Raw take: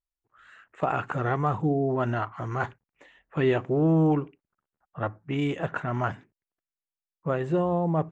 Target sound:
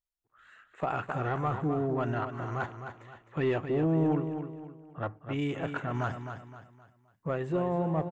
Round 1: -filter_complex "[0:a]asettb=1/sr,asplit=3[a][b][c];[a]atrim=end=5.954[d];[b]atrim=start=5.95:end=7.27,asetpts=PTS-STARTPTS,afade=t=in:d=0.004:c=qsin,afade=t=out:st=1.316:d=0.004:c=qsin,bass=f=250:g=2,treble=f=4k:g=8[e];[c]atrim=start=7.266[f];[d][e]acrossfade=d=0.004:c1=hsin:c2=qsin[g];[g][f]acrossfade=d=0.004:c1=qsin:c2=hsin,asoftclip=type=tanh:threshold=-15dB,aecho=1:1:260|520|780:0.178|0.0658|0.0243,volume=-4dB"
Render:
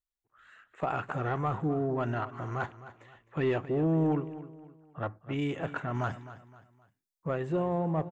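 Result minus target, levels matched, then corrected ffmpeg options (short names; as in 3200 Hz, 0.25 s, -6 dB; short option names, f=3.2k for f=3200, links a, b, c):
echo-to-direct -6.5 dB
-filter_complex "[0:a]asettb=1/sr,asplit=3[a][b][c];[a]atrim=end=5.954[d];[b]atrim=start=5.95:end=7.27,asetpts=PTS-STARTPTS,afade=t=in:d=0.004:c=qsin,afade=t=out:st=1.316:d=0.004:c=qsin,bass=f=250:g=2,treble=f=4k:g=8[e];[c]atrim=start=7.266[f];[d][e]acrossfade=d=0.004:c1=hsin:c2=qsin[g];[g][f]acrossfade=d=0.004:c1=qsin:c2=hsin,asoftclip=type=tanh:threshold=-15dB,aecho=1:1:260|520|780|1040:0.376|0.139|0.0515|0.019,volume=-4dB"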